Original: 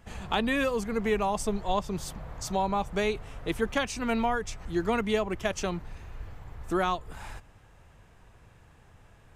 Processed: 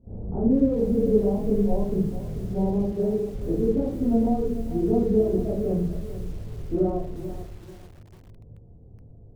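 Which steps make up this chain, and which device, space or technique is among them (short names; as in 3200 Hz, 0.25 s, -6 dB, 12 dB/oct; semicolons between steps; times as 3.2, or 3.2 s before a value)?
next room (LPF 450 Hz 24 dB/oct; reverb RT60 0.55 s, pre-delay 15 ms, DRR -8.5 dB); 2.92–3.34 weighting filter D; lo-fi delay 0.441 s, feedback 35%, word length 7-bit, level -12 dB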